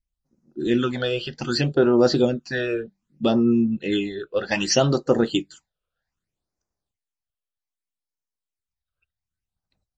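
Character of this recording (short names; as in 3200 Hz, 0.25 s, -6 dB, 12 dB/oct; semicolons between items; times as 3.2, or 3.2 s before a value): phasing stages 8, 0.64 Hz, lowest notch 250–3300 Hz; MP3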